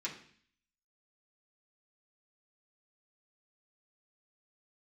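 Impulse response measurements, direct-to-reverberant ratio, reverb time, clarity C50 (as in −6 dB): −6.0 dB, 0.55 s, 9.0 dB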